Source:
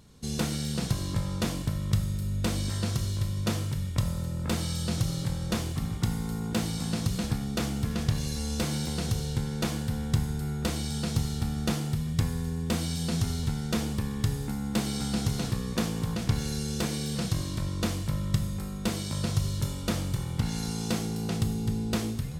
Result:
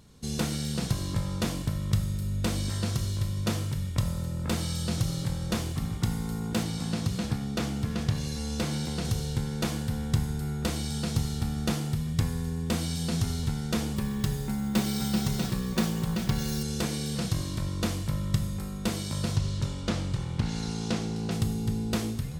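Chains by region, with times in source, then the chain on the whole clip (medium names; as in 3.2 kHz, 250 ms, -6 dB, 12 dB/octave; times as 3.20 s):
6.63–9.05 s: high-pass 61 Hz + treble shelf 8.5 kHz -7 dB
13.96–16.63 s: comb 5.3 ms, depth 53% + careless resampling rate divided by 2×, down none, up hold
19.36–21.31 s: low-pass 6.8 kHz + loudspeaker Doppler distortion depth 0.28 ms
whole clip: none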